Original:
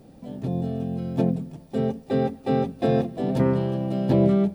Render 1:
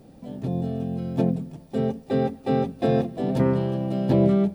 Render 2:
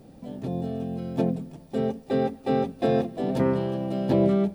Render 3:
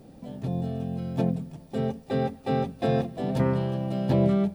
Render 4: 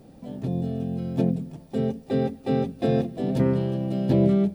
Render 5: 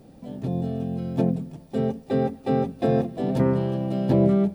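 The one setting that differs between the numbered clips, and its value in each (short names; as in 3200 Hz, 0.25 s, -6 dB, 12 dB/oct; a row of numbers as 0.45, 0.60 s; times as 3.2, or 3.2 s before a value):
dynamic EQ, frequency: 9100, 120, 320, 1000, 3500 Hz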